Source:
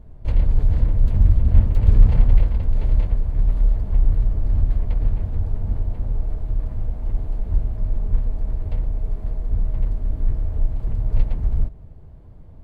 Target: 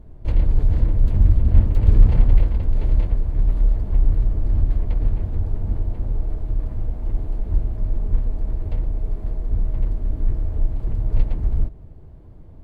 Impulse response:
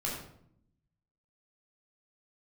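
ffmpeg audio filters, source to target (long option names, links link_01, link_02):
-af "equalizer=frequency=330:width_type=o:width=0.57:gain=5.5"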